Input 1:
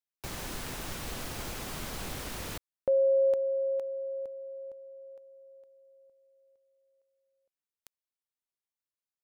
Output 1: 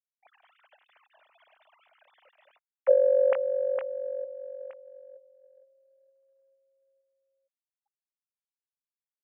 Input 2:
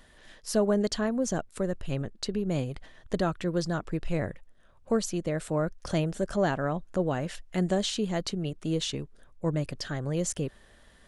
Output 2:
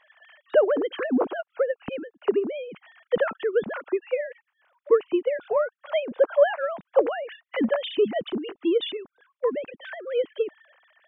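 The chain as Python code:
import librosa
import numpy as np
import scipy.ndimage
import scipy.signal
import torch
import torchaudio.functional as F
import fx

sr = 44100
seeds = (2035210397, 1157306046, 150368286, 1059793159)

y = fx.sine_speech(x, sr)
y = fx.transient(y, sr, attack_db=8, sustain_db=2)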